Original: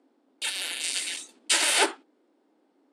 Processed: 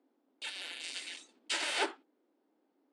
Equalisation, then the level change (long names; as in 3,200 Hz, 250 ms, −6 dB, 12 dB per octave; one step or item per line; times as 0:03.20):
high-frequency loss of the air 80 metres
−8.5 dB